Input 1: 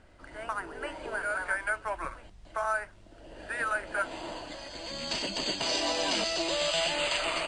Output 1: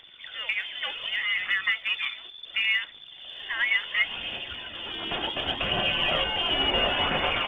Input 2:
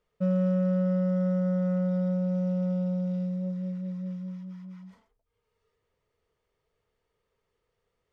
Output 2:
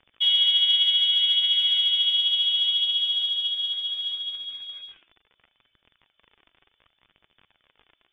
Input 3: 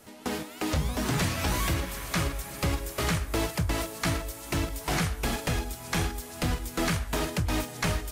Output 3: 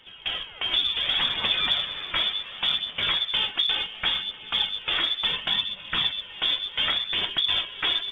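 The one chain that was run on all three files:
crackle 51 per s -40 dBFS; frequency inversion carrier 3.5 kHz; phaser 0.69 Hz, delay 3.1 ms, feedback 33%; peak normalisation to -12 dBFS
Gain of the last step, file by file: +4.5 dB, +4.0 dB, +1.5 dB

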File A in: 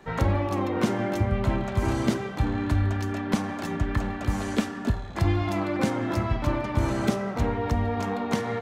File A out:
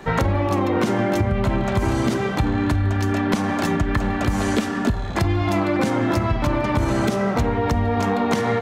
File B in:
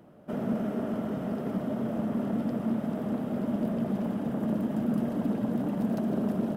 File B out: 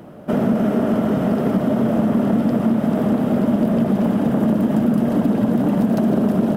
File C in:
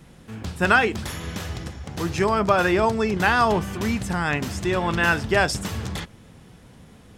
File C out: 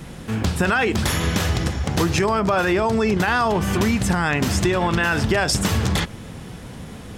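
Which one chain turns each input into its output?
peak limiter -16 dBFS; compression, threshold -28 dBFS; peak normalisation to -6 dBFS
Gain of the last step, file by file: +11.5 dB, +15.0 dB, +12.0 dB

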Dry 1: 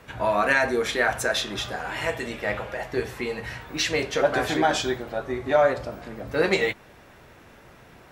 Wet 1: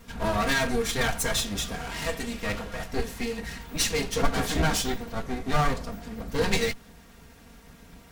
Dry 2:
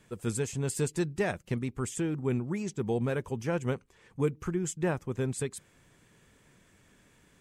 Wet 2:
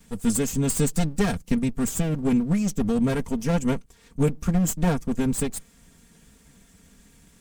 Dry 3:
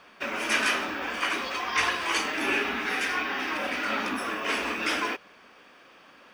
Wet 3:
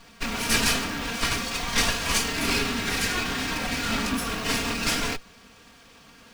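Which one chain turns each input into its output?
comb filter that takes the minimum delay 4.3 ms; tone controls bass +12 dB, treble +9 dB; peak normalisation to -9 dBFS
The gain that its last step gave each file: -4.0 dB, +2.5 dB, +1.0 dB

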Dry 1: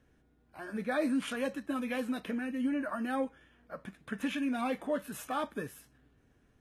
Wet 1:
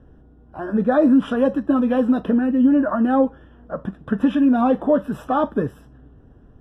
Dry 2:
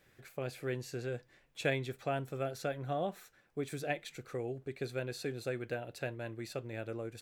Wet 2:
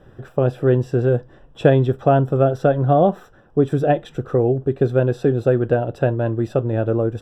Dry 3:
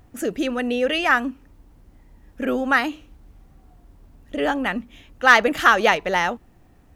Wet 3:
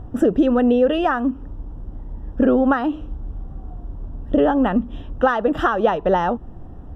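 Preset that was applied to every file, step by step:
bass shelf 85 Hz +6 dB; compression 5:1, threshold -26 dBFS; boxcar filter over 20 samples; normalise loudness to -19 LUFS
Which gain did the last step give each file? +17.0 dB, +21.5 dB, +14.0 dB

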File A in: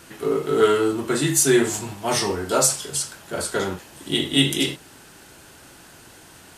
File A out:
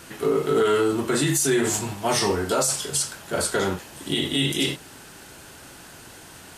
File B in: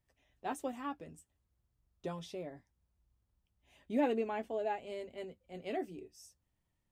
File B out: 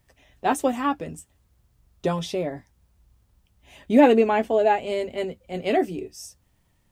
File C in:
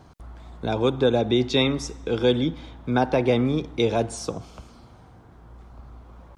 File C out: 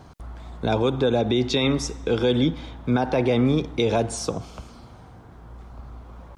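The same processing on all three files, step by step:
peak limiter -15 dBFS; peaking EQ 330 Hz -2 dB 0.22 oct; normalise loudness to -23 LUFS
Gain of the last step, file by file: +2.5 dB, +16.5 dB, +4.0 dB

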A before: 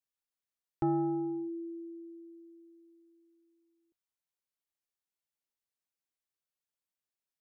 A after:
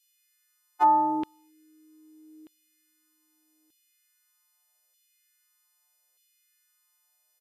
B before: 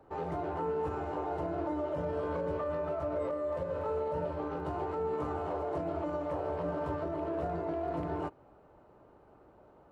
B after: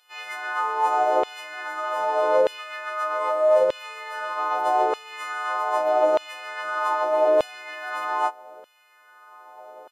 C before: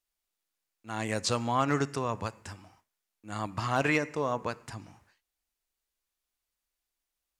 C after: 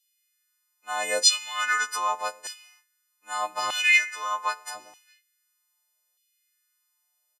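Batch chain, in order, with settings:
partials quantised in pitch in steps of 3 st; LFO high-pass saw down 0.81 Hz 490–3200 Hz; resampled via 32 kHz; normalise loudness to -24 LUFS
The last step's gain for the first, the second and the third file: +11.0 dB, +10.5 dB, +1.0 dB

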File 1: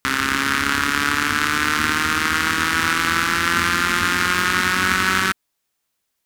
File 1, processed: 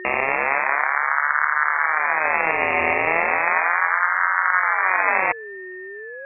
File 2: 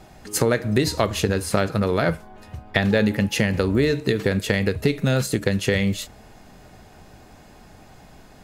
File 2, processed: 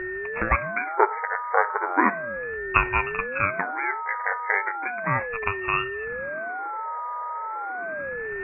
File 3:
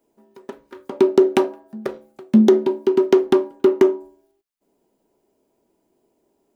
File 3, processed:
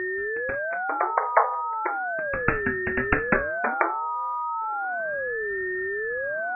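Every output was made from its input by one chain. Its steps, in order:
reverse; upward compressor, threshold -34 dBFS; reverse; brick-wall FIR band-pass 590–2100 Hz; whistle 1.1 kHz -33 dBFS; ring modulator with a swept carrier 430 Hz, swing 70%, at 0.35 Hz; peak normalisation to -2 dBFS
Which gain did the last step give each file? +4.0 dB, +7.5 dB, +10.5 dB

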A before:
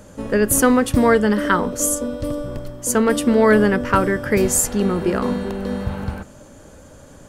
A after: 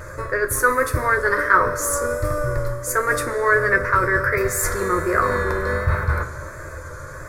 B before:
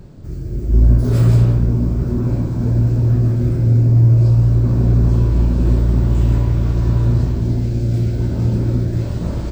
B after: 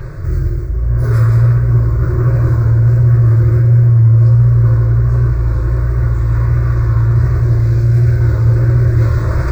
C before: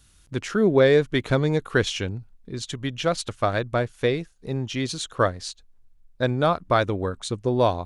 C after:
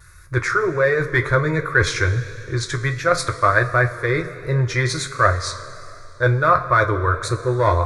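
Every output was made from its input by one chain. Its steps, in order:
in parallel at -6 dB: hard clipper -17.5 dBFS; on the sum: static phaser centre 800 Hz, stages 6; reverse; compression 6:1, threshold -24 dBFS; reverse; two-slope reverb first 0.2 s, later 2.9 s, from -18 dB, DRR 3.5 dB; vibrato 1.4 Hz 40 cents; ten-band graphic EQ 125 Hz +6 dB, 250 Hz -6 dB, 500 Hz -3 dB, 1 kHz +7 dB, 2 kHz +7 dB, 8 kHz -6 dB; peak normalisation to -1.5 dBFS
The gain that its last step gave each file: +5.0 dB, +11.0 dB, +7.5 dB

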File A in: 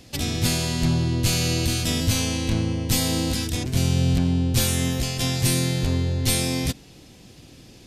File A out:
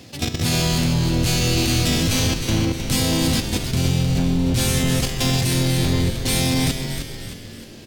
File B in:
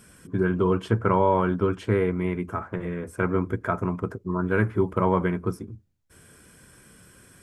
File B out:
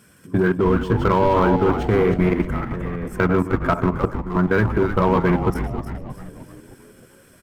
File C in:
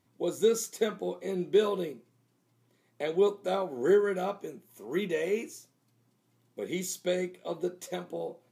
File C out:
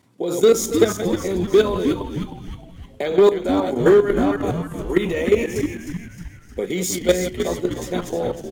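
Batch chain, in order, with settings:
chunks repeated in reverse 156 ms, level -9 dB; high-pass 80 Hz 12 dB/octave; in parallel at -9.5 dB: wavefolder -23 dBFS; on the sum: level held to a coarse grid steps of 12 dB; on a send: frequency-shifting echo 310 ms, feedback 50%, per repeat -120 Hz, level -8 dB; on the sum: decimation joined by straight lines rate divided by 2×; normalise loudness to -20 LUFS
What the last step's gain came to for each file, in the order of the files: +5.0 dB, +7.5 dB, +13.5 dB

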